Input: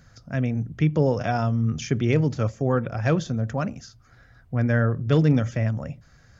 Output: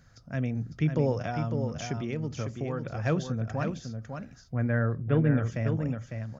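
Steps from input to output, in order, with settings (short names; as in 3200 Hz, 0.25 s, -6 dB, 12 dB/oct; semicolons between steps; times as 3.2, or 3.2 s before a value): 1.16–2.85 compressor, threshold -23 dBFS, peak gain reduction 8 dB; 4.54–5.43 LPF 2500 Hz 24 dB/oct; on a send: echo 0.552 s -6.5 dB; on the sum: gain -5.5 dB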